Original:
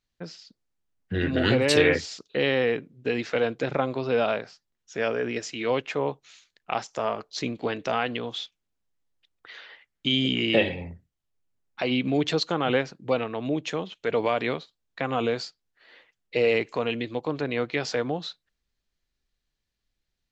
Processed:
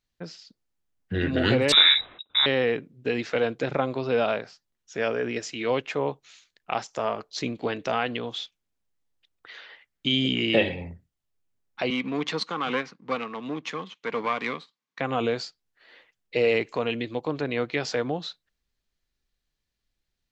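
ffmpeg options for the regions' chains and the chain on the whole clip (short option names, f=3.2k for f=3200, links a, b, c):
-filter_complex "[0:a]asettb=1/sr,asplit=3[a][b][c];[a]atrim=end=1.724[d];[b]atrim=start=1.72:end=2.46,asetpts=PTS-STARTPTS,afade=t=in:d=0.004:c=qsin,afade=t=out:st=0.736:d=0.004:c=qsin,equalizer=f=190:t=o:w=0.84:g=14.5,lowpass=f=3.4k:t=q:w=0.5098,lowpass=f=3.4k:t=q:w=0.6013,lowpass=f=3.4k:t=q:w=0.9,lowpass=f=3.4k:t=q:w=2.563,afreqshift=-4000[e];[c]atrim=start=2.456[f];[d][e]acrossfade=d=0.004:c1=hsin:c2=qsin[g];[g][f]acrossfade=d=0.004:c1=qsin:c2=hsin,asettb=1/sr,asplit=3[h][i][j];[h]atrim=end=11.904[k];[i]atrim=start=11.9:end=15,asetpts=PTS-STARTPTS,afade=t=in:d=0.004:c=qsin,afade=t=out:st=3.096:d=0.004:c=qsin,aeval=exprs='if(lt(val(0),0),0.447*val(0),val(0))':c=same,highpass=f=170:w=0.5412,highpass=f=170:w=1.3066,equalizer=f=360:t=q:w=4:g=-6,equalizer=f=620:t=q:w=4:g=-9,equalizer=f=1.1k:t=q:w=4:g=9,equalizer=f=2.1k:t=q:w=4:g=6,lowpass=f=6.8k:w=0.5412,lowpass=f=6.8k:w=1.3066[l];[j]atrim=start=14.996[m];[k][l]acrossfade=d=0.004:c1=hsin:c2=qsin[n];[n][m]acrossfade=d=0.004:c1=qsin:c2=hsin"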